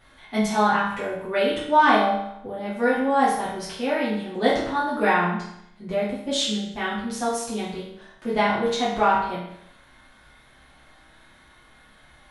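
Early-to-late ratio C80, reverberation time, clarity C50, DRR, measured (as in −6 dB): 5.5 dB, 0.75 s, 2.5 dB, −8.5 dB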